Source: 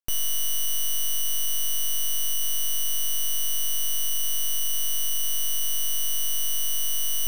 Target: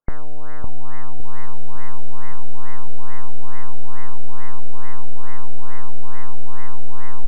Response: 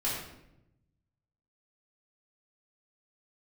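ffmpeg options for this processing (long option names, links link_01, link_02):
-filter_complex "[0:a]highshelf=frequency=2700:gain=-7.5,asplit=2[link_01][link_02];[link_02]adelay=559,lowpass=frequency=4600:poles=1,volume=-6dB,asplit=2[link_03][link_04];[link_04]adelay=559,lowpass=frequency=4600:poles=1,volume=0.53,asplit=2[link_05][link_06];[link_06]adelay=559,lowpass=frequency=4600:poles=1,volume=0.53,asplit=2[link_07][link_08];[link_08]adelay=559,lowpass=frequency=4600:poles=1,volume=0.53,asplit=2[link_09][link_10];[link_10]adelay=559,lowpass=frequency=4600:poles=1,volume=0.53,asplit=2[link_11][link_12];[link_12]adelay=559,lowpass=frequency=4600:poles=1,volume=0.53,asplit=2[link_13][link_14];[link_14]adelay=559,lowpass=frequency=4600:poles=1,volume=0.53[link_15];[link_03][link_05][link_07][link_09][link_11][link_13][link_15]amix=inputs=7:normalize=0[link_16];[link_01][link_16]amix=inputs=2:normalize=0,afftfilt=real='re*lt(b*sr/1024,780*pow(2200/780,0.5+0.5*sin(2*PI*2.3*pts/sr)))':imag='im*lt(b*sr/1024,780*pow(2200/780,0.5+0.5*sin(2*PI*2.3*pts/sr)))':win_size=1024:overlap=0.75,volume=13dB"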